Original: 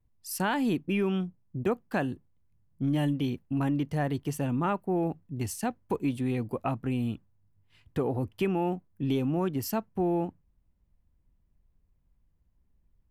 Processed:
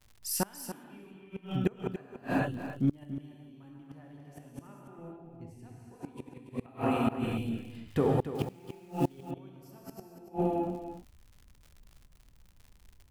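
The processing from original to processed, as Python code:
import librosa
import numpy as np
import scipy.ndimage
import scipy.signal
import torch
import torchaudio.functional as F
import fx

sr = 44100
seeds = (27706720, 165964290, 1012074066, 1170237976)

p1 = fx.tilt_eq(x, sr, slope=-2.5, at=(4.98, 5.62))
p2 = fx.highpass(p1, sr, hz=250.0, slope=12, at=(6.66, 7.07))
p3 = fx.level_steps(p2, sr, step_db=24)
p4 = p2 + (p3 * librosa.db_to_amplitude(1.0))
p5 = fx.rev_gated(p4, sr, seeds[0], gate_ms=480, shape='flat', drr_db=-3.5)
p6 = fx.dmg_crackle(p5, sr, seeds[1], per_s=84.0, level_db=-45.0)
p7 = fx.gate_flip(p6, sr, shuts_db=-16.0, range_db=-29)
p8 = p7 + fx.echo_single(p7, sr, ms=286, db=-11.0, dry=0)
y = fx.quant_companded(p8, sr, bits=6, at=(8.35, 9.31))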